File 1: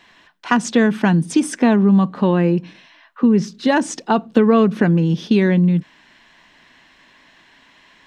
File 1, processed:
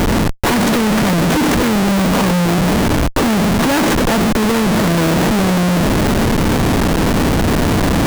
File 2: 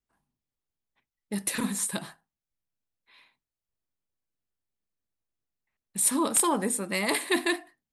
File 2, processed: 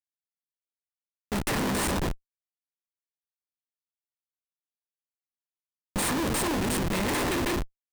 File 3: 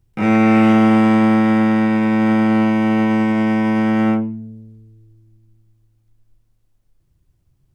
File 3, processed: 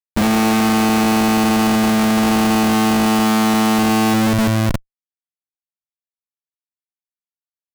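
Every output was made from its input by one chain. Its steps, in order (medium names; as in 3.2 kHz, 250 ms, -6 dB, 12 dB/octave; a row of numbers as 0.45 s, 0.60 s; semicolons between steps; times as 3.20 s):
spectral levelling over time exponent 0.4; Schmitt trigger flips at -20.5 dBFS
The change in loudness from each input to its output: +2.5 LU, -1.0 LU, -0.5 LU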